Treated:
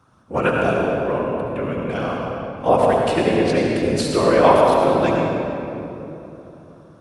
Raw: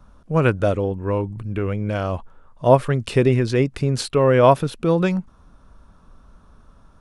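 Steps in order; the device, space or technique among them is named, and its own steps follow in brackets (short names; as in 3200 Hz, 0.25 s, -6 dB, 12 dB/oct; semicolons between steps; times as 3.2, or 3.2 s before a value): whispering ghost (whisperiser; HPF 370 Hz 6 dB/oct; reverb RT60 3.2 s, pre-delay 64 ms, DRR -1.5 dB)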